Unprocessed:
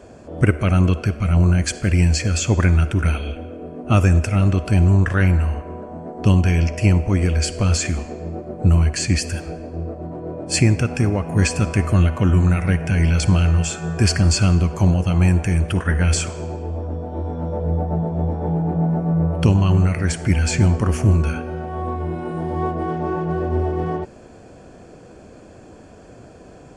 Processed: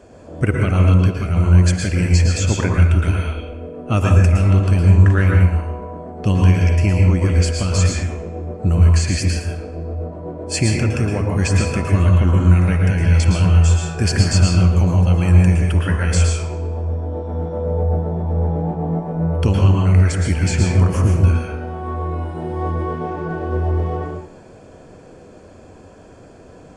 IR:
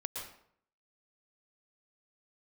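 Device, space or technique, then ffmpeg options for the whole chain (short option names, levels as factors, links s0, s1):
bathroom: -filter_complex "[1:a]atrim=start_sample=2205[s0];[0:a][s0]afir=irnorm=-1:irlink=0,asettb=1/sr,asplit=3[s1][s2][s3];[s1]atrim=end=8.034[s4];[s2]atrim=start=8.03:end=8.54,asetpts=PTS-STARTPTS,afade=t=in:d=0.004:c=qsin,afade=t=out:st=0.506:d=0.004:c=qsin,bandreject=f=4500:w=5.2[s5];[s3]atrim=start=8.536[s6];[s4][s5]acrossfade=d=0.004:c1=hsin:c2=qsin[s7];[s7][s6]acrossfade=d=0.004:c1=qsin:c2=hsin"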